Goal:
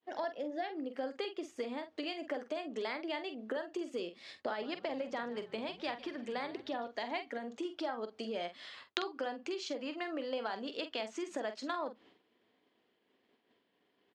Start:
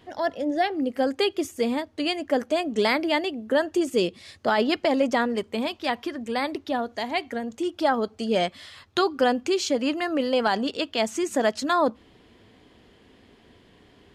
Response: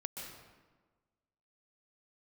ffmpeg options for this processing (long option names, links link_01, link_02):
-filter_complex "[0:a]agate=range=-33dB:threshold=-44dB:ratio=3:detection=peak,acompressor=threshold=-31dB:ratio=10,aeval=exprs='0.237*(cos(1*acos(clip(val(0)/0.237,-1,1)))-cos(1*PI/2))+0.0422*(cos(3*acos(clip(val(0)/0.237,-1,1)))-cos(3*PI/2))':channel_layout=same,highpass=290,lowpass=4700,asplit=2[link_01][link_02];[link_02]adelay=46,volume=-9.5dB[link_03];[link_01][link_03]amix=inputs=2:normalize=0,asettb=1/sr,asplit=3[link_04][link_05][link_06];[link_04]atrim=end=4.464[link_07];[link_05]atrim=start=4.46:end=6.88,asetpts=PTS-STARTPTS,afade=type=in:duration=0.004:curve=qsin,afade=type=out:start_time=2.416:duration=0.004:curve=qsin,asplit=4[link_08][link_09][link_10][link_11];[link_09]adelay=150,afreqshift=-57,volume=-17dB[link_12];[link_10]adelay=300,afreqshift=-114,volume=-25.4dB[link_13];[link_11]adelay=450,afreqshift=-171,volume=-33.8dB[link_14];[link_08][link_12][link_13][link_14]amix=inputs=4:normalize=0,atrim=end_sample=106722[link_15];[link_06]atrim=start=6.876[link_16];[link_07][link_15]acrossfade=duration=0.004:curve1=hsin:curve2=qsin[link_17];[link_17][link_16]acrossfade=duration=0.004:curve1=qsin:curve2=hsin,volume=3dB"